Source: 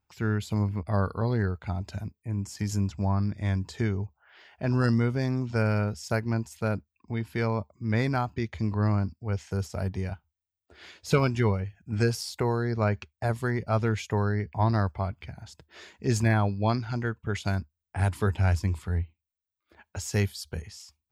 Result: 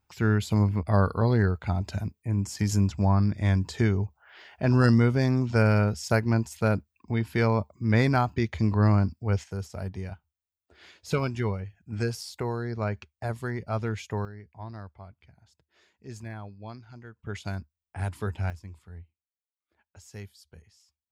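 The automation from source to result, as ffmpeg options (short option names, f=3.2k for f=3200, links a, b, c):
-af "asetnsamples=n=441:p=0,asendcmd='9.44 volume volume -4dB;14.25 volume volume -16dB;17.19 volume volume -5.5dB;18.5 volume volume -16dB',volume=4dB"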